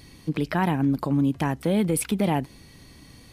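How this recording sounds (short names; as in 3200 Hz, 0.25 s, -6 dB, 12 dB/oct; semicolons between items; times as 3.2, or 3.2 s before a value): noise floor -50 dBFS; spectral tilt -6.0 dB/oct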